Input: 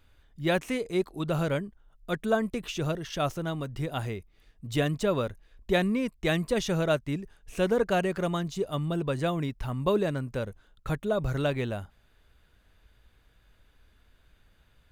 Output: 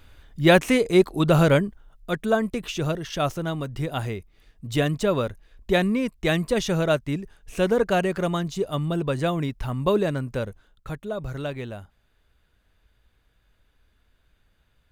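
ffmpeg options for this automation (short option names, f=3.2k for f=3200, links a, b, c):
-af "volume=10.5dB,afade=t=out:st=1.65:d=0.45:silence=0.473151,afade=t=out:st=10.42:d=0.48:silence=0.446684"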